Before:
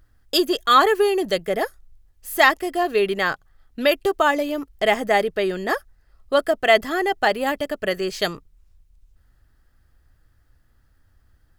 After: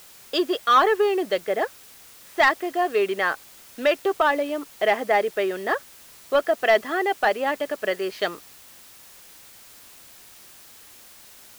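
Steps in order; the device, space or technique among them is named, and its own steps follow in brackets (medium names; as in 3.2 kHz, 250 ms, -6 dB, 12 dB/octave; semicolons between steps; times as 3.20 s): tape answering machine (band-pass 330–3000 Hz; saturation -9 dBFS, distortion -17 dB; wow and flutter 24 cents; white noise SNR 23 dB)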